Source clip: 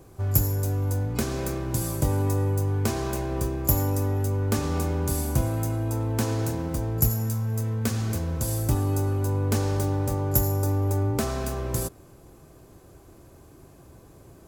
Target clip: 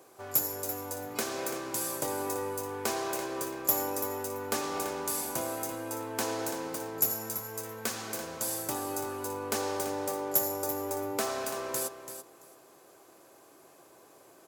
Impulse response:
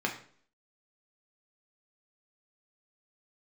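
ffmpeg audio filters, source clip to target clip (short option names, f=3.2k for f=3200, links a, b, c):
-filter_complex "[0:a]highpass=490,asoftclip=type=tanh:threshold=-14dB,asplit=2[a][b];[b]aecho=0:1:336|672:0.299|0.0537[c];[a][c]amix=inputs=2:normalize=0"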